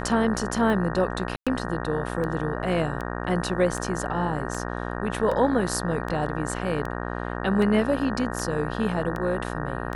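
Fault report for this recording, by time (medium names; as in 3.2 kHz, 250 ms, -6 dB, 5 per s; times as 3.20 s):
buzz 60 Hz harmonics 31 -31 dBFS
tick 78 rpm -19 dBFS
1.36–1.47 s: dropout 106 ms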